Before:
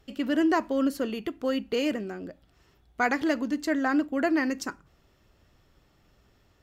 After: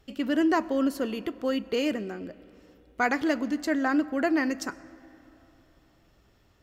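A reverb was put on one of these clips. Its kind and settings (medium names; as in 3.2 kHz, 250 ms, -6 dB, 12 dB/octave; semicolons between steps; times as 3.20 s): algorithmic reverb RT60 3.4 s, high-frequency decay 0.55×, pre-delay 60 ms, DRR 19.5 dB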